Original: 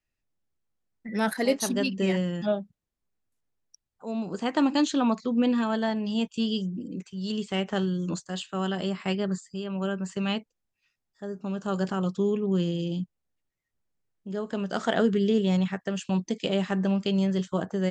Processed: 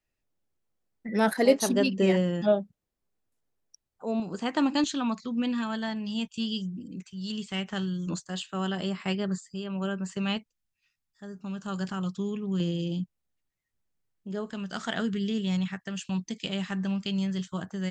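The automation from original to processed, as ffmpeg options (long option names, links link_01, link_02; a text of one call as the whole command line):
ffmpeg -i in.wav -af "asetnsamples=nb_out_samples=441:pad=0,asendcmd='4.2 equalizer g -3.5;4.84 equalizer g -10.5;8.07 equalizer g -3.5;10.37 equalizer g -11;12.6 equalizer g -2.5;14.5 equalizer g -12.5',equalizer=frequency=490:width_type=o:width=1.8:gain=4.5" out.wav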